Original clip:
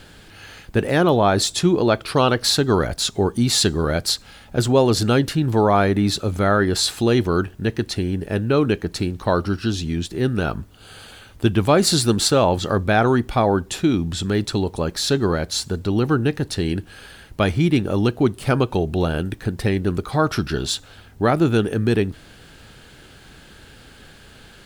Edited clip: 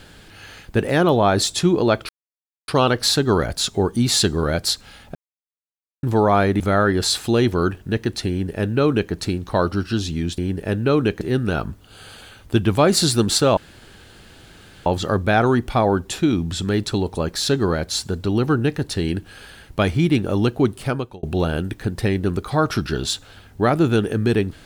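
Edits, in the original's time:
2.09 insert silence 0.59 s
4.56–5.44 mute
6.01–6.33 cut
8.02–8.85 copy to 10.11
12.47 insert room tone 1.29 s
18.32–18.84 fade out

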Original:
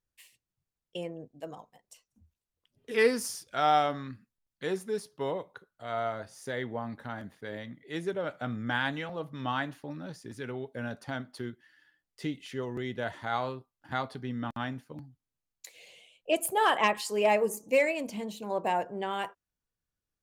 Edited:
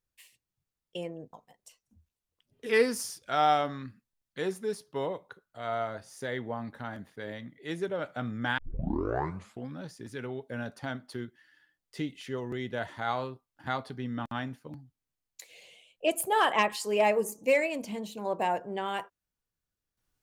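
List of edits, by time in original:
1.33–1.58 cut
8.83 tape start 1.22 s

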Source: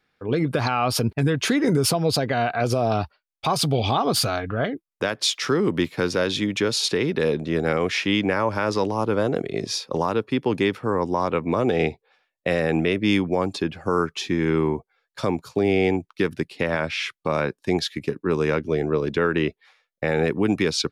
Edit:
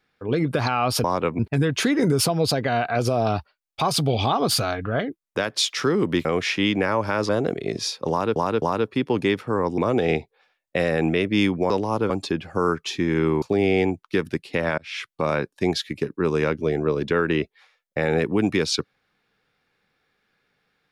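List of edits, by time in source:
5.9–7.73 cut
8.77–9.17 move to 13.41
9.98–10.24 loop, 3 plays
11.14–11.49 move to 1.04
14.73–15.48 cut
16.84–17.13 fade in

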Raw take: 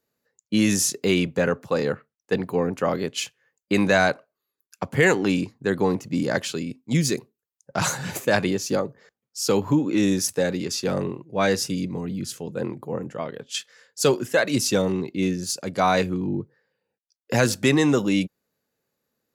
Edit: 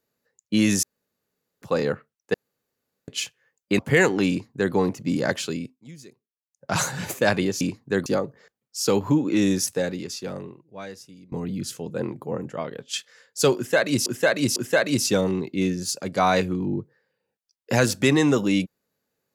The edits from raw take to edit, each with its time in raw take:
0.83–1.62 room tone
2.34–3.08 room tone
3.79–4.85 cut
5.35–5.8 copy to 8.67
6.65–7.81 dip -22 dB, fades 0.26 s
10.18–11.93 fade out quadratic, to -21.5 dB
14.17–14.67 loop, 3 plays

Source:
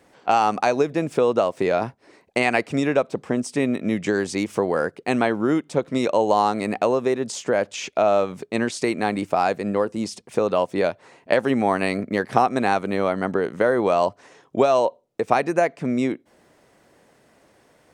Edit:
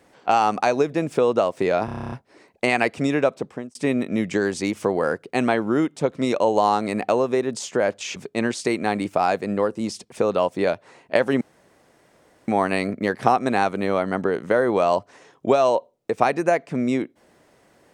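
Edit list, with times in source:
1.85 stutter 0.03 s, 10 plays
3.07–3.48 fade out
7.89–8.33 cut
11.58 insert room tone 1.07 s

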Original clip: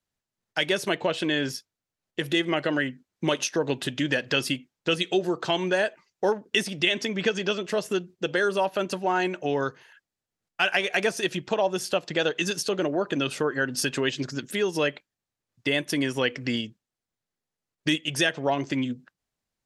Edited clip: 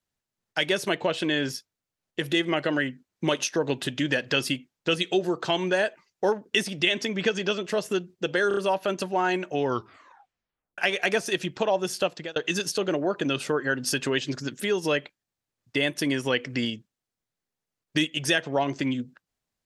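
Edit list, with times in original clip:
8.48 stutter 0.03 s, 4 plays
9.54 tape stop 1.15 s
11.99–12.27 fade out

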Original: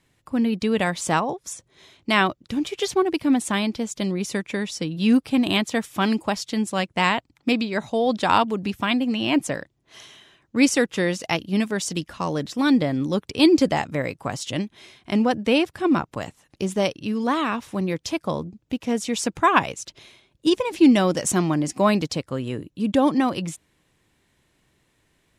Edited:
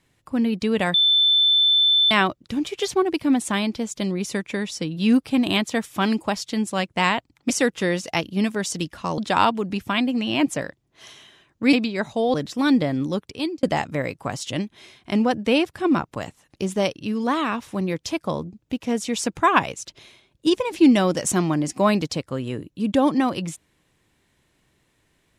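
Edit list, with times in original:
0.94–2.11 bleep 3530 Hz -14 dBFS
7.5–8.11 swap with 10.66–12.34
13.03–13.63 fade out

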